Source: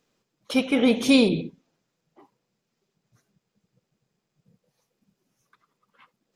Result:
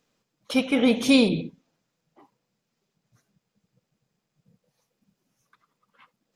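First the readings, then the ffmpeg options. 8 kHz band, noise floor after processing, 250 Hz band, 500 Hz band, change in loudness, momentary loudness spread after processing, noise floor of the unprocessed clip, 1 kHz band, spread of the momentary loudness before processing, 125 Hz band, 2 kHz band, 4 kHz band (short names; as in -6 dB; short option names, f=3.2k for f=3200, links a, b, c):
0.0 dB, -80 dBFS, -0.5 dB, -1.0 dB, -0.5 dB, 12 LU, -80 dBFS, 0.0 dB, 11 LU, 0.0 dB, 0.0 dB, 0.0 dB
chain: -af "equalizer=f=380:w=4.9:g=-5"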